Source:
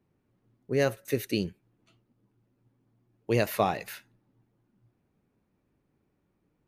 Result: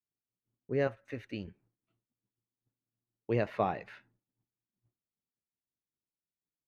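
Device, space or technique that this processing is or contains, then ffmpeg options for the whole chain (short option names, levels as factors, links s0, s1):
hearing-loss simulation: -filter_complex "[0:a]asettb=1/sr,asplit=3[s0][s1][s2];[s0]atrim=end=0.874[s3];[s1]atrim=start=0.87:end=1.48,asetpts=PTS-STARTPTS,afade=t=in:d=0.004:c=qsin,afade=t=out:st=0.606:d=0.004:c=qsin,equalizer=f=160:t=o:w=0.67:g=-11,equalizer=f=400:t=o:w=0.67:g=-11,equalizer=f=4000:t=o:w=0.67:g=-3[s4];[s2]atrim=start=1.476[s5];[s3][s4]acrossfade=d=0.004:c1=hsin:c2=qsin[s6];[s6][s5]acrossfade=d=0.004:c1=qsin:c2=hsin,lowpass=2200,agate=range=0.0224:threshold=0.00141:ratio=3:detection=peak,volume=0.596"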